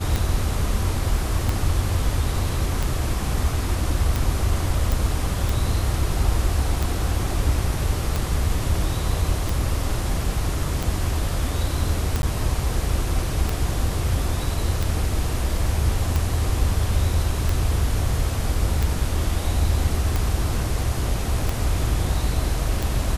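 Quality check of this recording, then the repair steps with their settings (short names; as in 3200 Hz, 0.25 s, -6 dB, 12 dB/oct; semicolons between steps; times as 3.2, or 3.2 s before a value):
tick 45 rpm
4.92 pop
12.22–12.23 gap 11 ms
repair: de-click; interpolate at 12.22, 11 ms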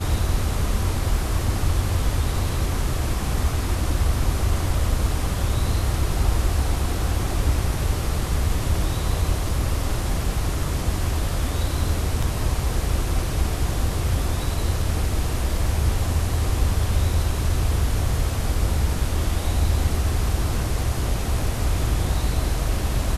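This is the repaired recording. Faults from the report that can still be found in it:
none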